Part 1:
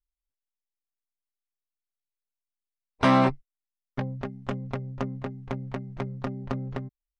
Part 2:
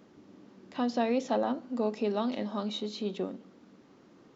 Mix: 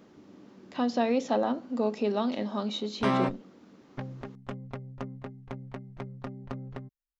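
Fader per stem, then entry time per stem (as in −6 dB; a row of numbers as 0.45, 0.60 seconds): −7.0, +2.0 decibels; 0.00, 0.00 seconds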